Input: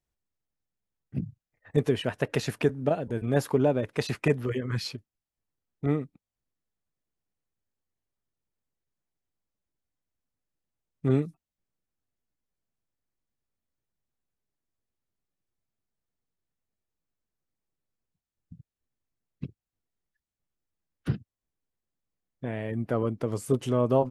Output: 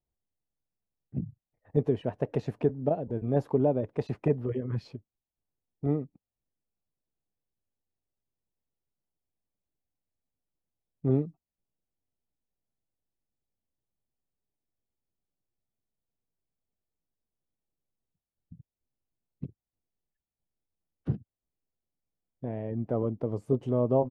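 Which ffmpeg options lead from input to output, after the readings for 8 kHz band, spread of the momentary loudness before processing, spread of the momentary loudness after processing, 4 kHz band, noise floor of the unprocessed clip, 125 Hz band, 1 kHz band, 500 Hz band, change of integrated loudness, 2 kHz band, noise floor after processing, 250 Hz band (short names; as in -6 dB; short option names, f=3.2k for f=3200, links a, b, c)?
under -20 dB, 14 LU, 15 LU, under -15 dB, under -85 dBFS, -1.5 dB, -3.5 dB, -1.5 dB, -1.5 dB, under -15 dB, under -85 dBFS, -1.5 dB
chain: -af "firequalizer=gain_entry='entry(770,0);entry(1400,-13);entry(10000,-26)':delay=0.05:min_phase=1,volume=-1.5dB"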